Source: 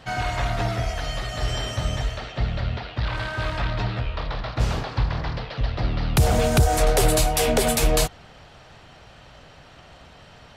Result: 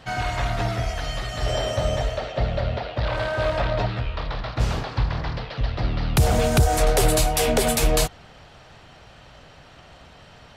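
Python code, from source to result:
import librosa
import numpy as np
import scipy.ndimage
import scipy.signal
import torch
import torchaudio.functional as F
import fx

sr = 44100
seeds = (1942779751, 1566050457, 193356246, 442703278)

y = fx.peak_eq(x, sr, hz=580.0, db=11.5, octaves=0.78, at=(1.46, 3.86))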